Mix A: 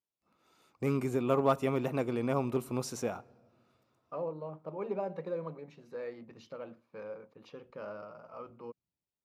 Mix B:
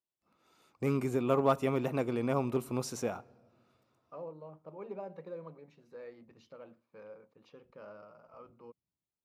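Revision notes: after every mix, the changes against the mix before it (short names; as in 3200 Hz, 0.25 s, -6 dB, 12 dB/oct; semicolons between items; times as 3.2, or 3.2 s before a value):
second voice -7.0 dB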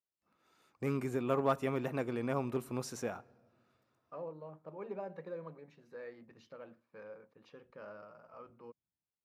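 first voice -4.0 dB; master: add bell 1700 Hz +6.5 dB 0.43 oct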